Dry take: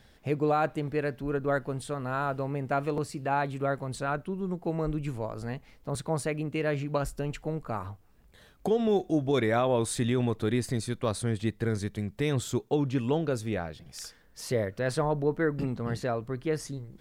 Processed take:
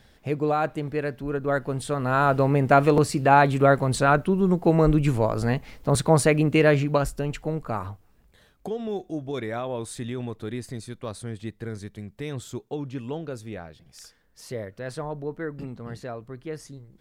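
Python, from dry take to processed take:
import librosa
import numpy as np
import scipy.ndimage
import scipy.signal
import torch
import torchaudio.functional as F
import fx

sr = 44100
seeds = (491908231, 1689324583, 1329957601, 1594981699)

y = fx.gain(x, sr, db=fx.line((1.39, 2.0), (2.44, 11.5), (6.62, 11.5), (7.14, 4.5), (7.85, 4.5), (8.72, -5.0)))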